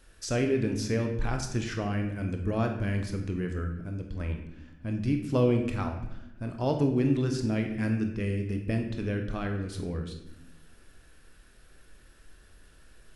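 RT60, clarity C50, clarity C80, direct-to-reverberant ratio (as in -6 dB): 0.90 s, 7.0 dB, 9.5 dB, 3.5 dB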